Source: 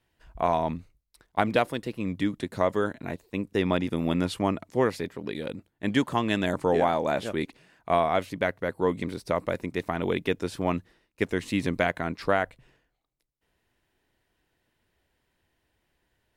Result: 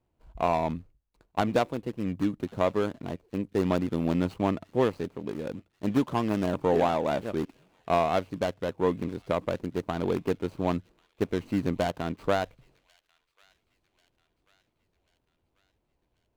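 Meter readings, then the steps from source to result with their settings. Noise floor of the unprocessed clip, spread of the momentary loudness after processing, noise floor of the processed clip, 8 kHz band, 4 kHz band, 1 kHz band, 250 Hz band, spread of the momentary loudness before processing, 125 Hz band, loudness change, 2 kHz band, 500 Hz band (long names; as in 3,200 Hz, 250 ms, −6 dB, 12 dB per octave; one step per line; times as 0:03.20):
−78 dBFS, 9 LU, −77 dBFS, can't be measured, −4.5 dB, −1.5 dB, 0.0 dB, 9 LU, 0.0 dB, −1.0 dB, −6.5 dB, −1.0 dB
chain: running median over 25 samples
delay with a high-pass on its return 1,090 ms, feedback 51%, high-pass 2,200 Hz, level −23 dB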